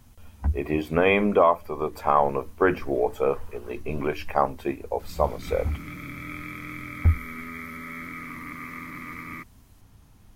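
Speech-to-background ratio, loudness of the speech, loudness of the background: 12.0 dB, -25.5 LUFS, -37.5 LUFS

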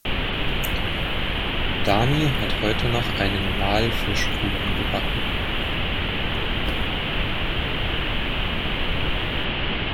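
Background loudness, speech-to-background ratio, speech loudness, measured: -24.5 LUFS, -2.0 dB, -26.5 LUFS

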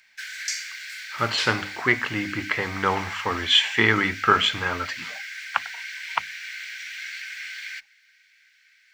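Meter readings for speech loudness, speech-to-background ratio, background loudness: -23.0 LUFS, 10.5 dB, -33.5 LUFS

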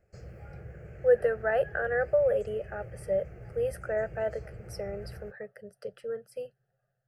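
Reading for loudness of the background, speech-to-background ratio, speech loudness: -46.5 LUFS, 16.5 dB, -30.0 LUFS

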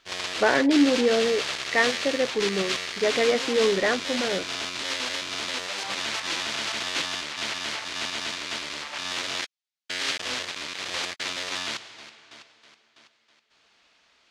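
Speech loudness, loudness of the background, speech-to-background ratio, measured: -24.5 LUFS, -28.5 LUFS, 4.0 dB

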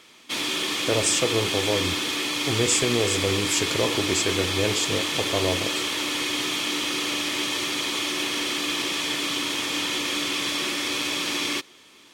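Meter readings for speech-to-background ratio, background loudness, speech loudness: -1.5 dB, -24.5 LUFS, -26.0 LUFS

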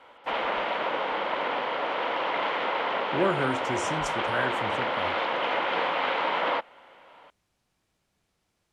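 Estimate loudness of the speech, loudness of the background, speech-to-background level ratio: -31.5 LUFS, -28.0 LUFS, -3.5 dB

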